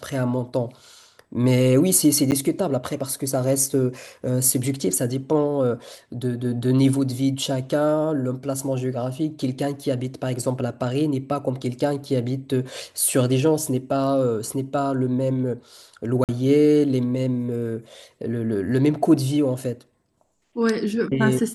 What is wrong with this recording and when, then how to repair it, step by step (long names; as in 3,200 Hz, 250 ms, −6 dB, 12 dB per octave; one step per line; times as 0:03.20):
0:02.31–0:02.32: drop-out 9.3 ms
0:16.24–0:16.29: drop-out 48 ms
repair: repair the gap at 0:02.31, 9.3 ms
repair the gap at 0:16.24, 48 ms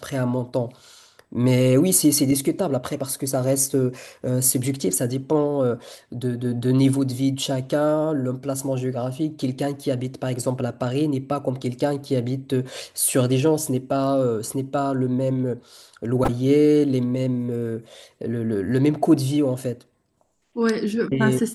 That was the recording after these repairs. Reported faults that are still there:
none of them is left